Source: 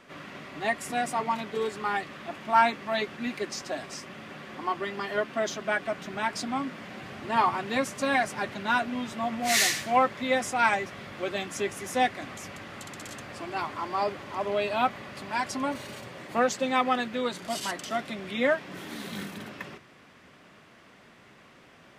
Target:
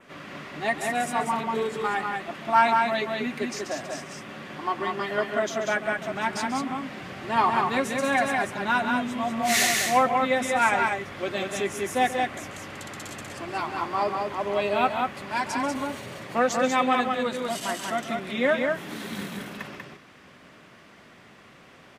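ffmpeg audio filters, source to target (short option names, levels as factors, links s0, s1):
-af "aecho=1:1:138|191:0.237|0.668,adynamicequalizer=threshold=0.00355:dfrequency=4700:dqfactor=1.9:tfrequency=4700:tqfactor=1.9:attack=5:release=100:ratio=0.375:range=3:mode=cutabove:tftype=bell,volume=1.19"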